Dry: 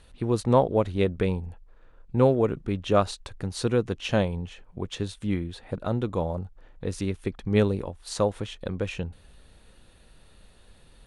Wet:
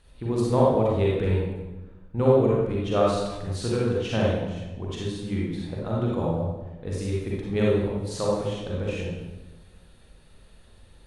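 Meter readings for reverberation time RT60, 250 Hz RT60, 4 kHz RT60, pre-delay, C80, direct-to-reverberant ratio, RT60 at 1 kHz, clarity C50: 1.1 s, 1.3 s, 0.80 s, 37 ms, 2.0 dB, -5.0 dB, 1.0 s, -2.5 dB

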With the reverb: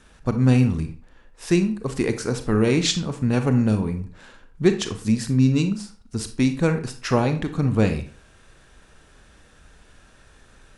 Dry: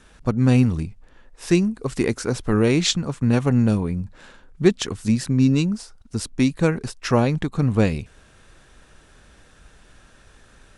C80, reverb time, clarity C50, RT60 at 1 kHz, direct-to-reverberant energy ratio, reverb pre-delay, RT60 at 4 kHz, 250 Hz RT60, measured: 15.5 dB, 0.45 s, 10.5 dB, 0.45 s, 8.0 dB, 31 ms, 0.30 s, 0.40 s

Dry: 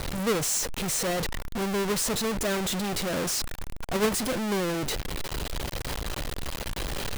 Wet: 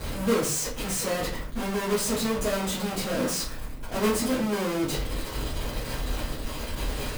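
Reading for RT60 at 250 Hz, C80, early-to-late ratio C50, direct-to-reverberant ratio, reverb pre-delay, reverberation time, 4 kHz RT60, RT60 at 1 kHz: 0.55 s, 11.5 dB, 6.0 dB, -10.5 dB, 5 ms, 0.45 s, 0.30 s, 0.45 s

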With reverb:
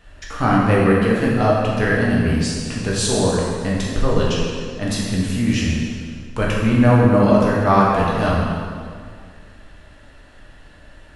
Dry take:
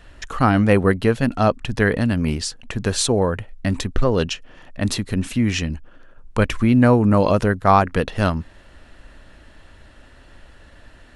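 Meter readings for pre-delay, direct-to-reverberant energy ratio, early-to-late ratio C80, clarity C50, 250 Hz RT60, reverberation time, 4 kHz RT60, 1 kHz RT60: 4 ms, -5.5 dB, 1.0 dB, -1.0 dB, 2.1 s, 2.0 s, 1.7 s, 2.0 s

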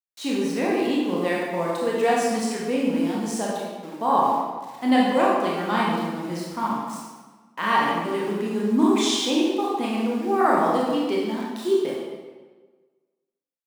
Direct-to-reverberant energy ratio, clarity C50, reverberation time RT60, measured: -5.0 dB, -1.0 dB, 1.4 s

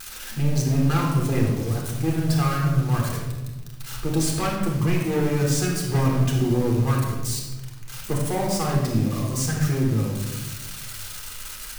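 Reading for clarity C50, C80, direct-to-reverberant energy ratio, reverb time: 2.0 dB, 4.5 dB, -2.5 dB, 1.2 s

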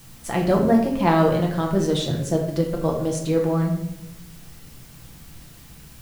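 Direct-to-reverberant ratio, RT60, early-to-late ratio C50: -0.5 dB, 0.90 s, 6.0 dB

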